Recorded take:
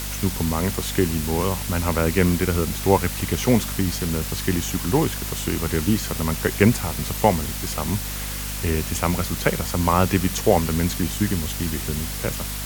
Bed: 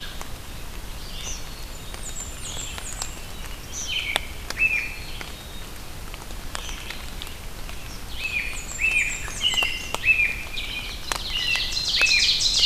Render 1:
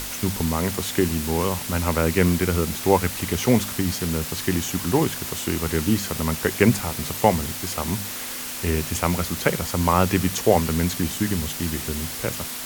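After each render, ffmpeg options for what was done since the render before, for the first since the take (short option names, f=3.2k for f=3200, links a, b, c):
-af "bandreject=f=50:t=h:w=6,bandreject=f=100:t=h:w=6,bandreject=f=150:t=h:w=6,bandreject=f=200:t=h:w=6"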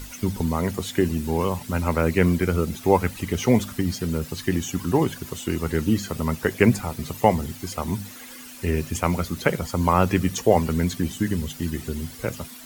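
-af "afftdn=nr=13:nf=-32"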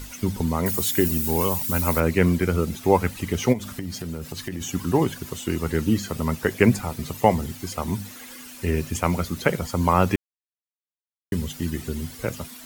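-filter_complex "[0:a]asettb=1/sr,asplit=3[a][b][c];[a]atrim=end=0.664[d];[b]atrim=start=0.66:end=2,asetpts=PTS-STARTPTS,afade=t=in:d=0.004:c=qsin,afade=t=out:st=1.336:d=0.004:c=qsin,aemphasis=mode=production:type=50fm[e];[c]atrim=start=1.996[f];[d][e]acrossfade=d=0.004:c1=hsin:c2=qsin[g];[g][f]acrossfade=d=0.004:c1=qsin:c2=hsin,asplit=3[h][i][j];[h]afade=t=out:st=3.52:d=0.02[k];[i]acompressor=threshold=-27dB:ratio=5:attack=3.2:release=140:knee=1:detection=peak,afade=t=in:st=3.52:d=0.02,afade=t=out:st=4.6:d=0.02[l];[j]afade=t=in:st=4.6:d=0.02[m];[k][l][m]amix=inputs=3:normalize=0,asplit=3[n][o][p];[n]atrim=end=10.16,asetpts=PTS-STARTPTS,afade=t=out:st=10.156:d=0.004:c=hsin[q];[o]atrim=start=10.16:end=11.32,asetpts=PTS-STARTPTS,volume=0[r];[p]atrim=start=11.32,asetpts=PTS-STARTPTS,afade=t=in:d=0.004:c=hsin[s];[q][r][s]concat=n=3:v=0:a=1"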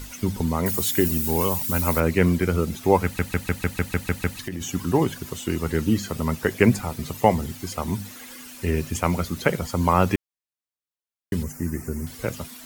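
-filter_complex "[0:a]asettb=1/sr,asplit=3[a][b][c];[a]atrim=end=11.434[d];[b]atrim=start=11.43:end=12.07,asetpts=PTS-STARTPTS,afade=t=in:d=0.004:c=qsin,afade=t=out:st=0.636:d=0.004:c=qsin,asuperstop=centerf=3500:order=4:qfactor=0.93[e];[c]atrim=start=12.066[f];[d][e]acrossfade=d=0.004:c1=hsin:c2=qsin[g];[g][f]acrossfade=d=0.004:c1=qsin:c2=hsin,asplit=10[h][i][j][k][l][m][n][o][p][q];[h]atrim=end=3.192[r];[i]atrim=start=3.038:end=3.192[s];[j]atrim=start=3.038:end=3.192[t];[k]atrim=start=3.038:end=3.192[u];[l]atrim=start=3.038:end=3.192[v];[m]atrim=start=3.038:end=3.192[w];[n]atrim=start=3.038:end=3.192[x];[o]atrim=start=3.038:end=3.192[y];[p]atrim=start=3.038:end=3.192[z];[q]atrim=start=4.388[aa];[r][s]acrossfade=d=0.004:c1=hsin:c2=hsin[ab];[ab][t]acrossfade=d=0.004:c1=hsin:c2=hsin[ac];[ac][u]acrossfade=d=0.004:c1=hsin:c2=hsin[ad];[ad][v]acrossfade=d=0.004:c1=hsin:c2=hsin[ae];[ae][w]acrossfade=d=0.004:c1=hsin:c2=hsin[af];[af][x]acrossfade=d=0.004:c1=hsin:c2=hsin[ag];[ag][y]acrossfade=d=0.004:c1=hsin:c2=hsin[ah];[ah][z]acrossfade=d=0.004:c1=hsin:c2=hsin[ai];[ai][aa]acrossfade=d=0.004:c1=hsin:c2=hsin"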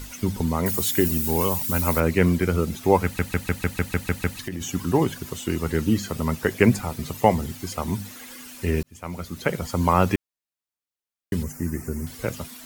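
-filter_complex "[0:a]asplit=2[a][b];[a]atrim=end=8.83,asetpts=PTS-STARTPTS,afade=t=out:st=8.826:d=0.004:c=hsin[c];[b]atrim=start=8.83,asetpts=PTS-STARTPTS,afade=t=in:d=0.91[d];[c][d]concat=n=2:v=0:a=1"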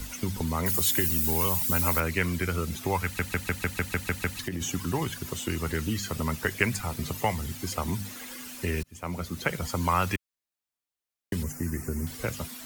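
-filter_complex "[0:a]acrossover=split=120|1100|7100[a][b][c][d];[a]alimiter=level_in=5dB:limit=-24dB:level=0:latency=1,volume=-5dB[e];[b]acompressor=threshold=-30dB:ratio=6[f];[e][f][c][d]amix=inputs=4:normalize=0"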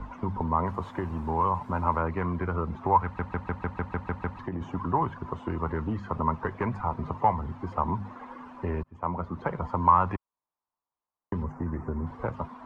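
-af "asoftclip=type=tanh:threshold=-20dB,lowpass=f=1k:t=q:w=4.9"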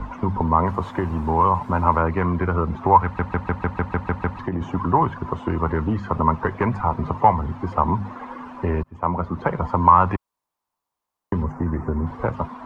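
-af "volume=8dB,alimiter=limit=-2dB:level=0:latency=1"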